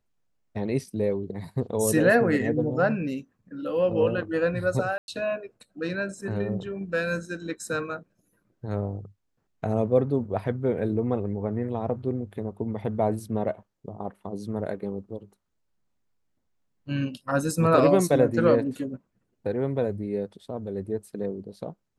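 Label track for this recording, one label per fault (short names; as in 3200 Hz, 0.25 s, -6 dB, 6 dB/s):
4.980000	5.080000	gap 0.101 s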